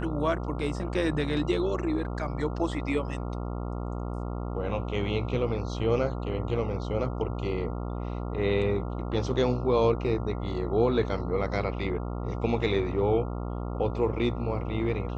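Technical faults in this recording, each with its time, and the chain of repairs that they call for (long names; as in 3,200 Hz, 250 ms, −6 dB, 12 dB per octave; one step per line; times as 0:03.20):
mains buzz 60 Hz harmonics 23 −33 dBFS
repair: hum removal 60 Hz, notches 23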